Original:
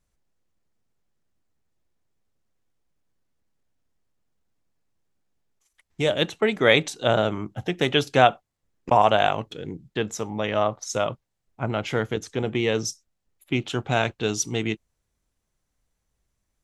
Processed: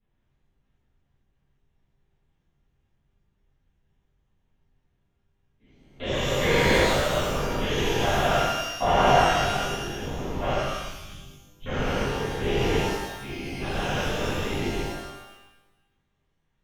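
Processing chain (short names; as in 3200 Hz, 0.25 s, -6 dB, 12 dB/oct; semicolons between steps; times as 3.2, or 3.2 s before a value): stepped spectrum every 0.4 s; 10.56–11.67 inverse Chebyshev band-stop 240–1800 Hz, stop band 40 dB; LPC vocoder at 8 kHz whisper; shimmer reverb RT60 1 s, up +12 st, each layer -8 dB, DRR -11.5 dB; gain -8 dB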